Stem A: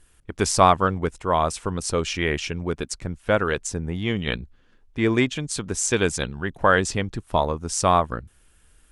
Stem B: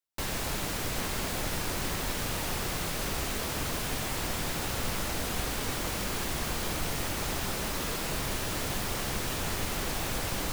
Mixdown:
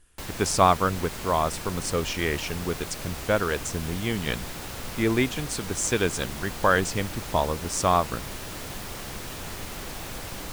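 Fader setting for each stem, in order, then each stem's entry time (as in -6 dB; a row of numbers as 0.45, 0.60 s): -3.0, -4.0 dB; 0.00, 0.00 s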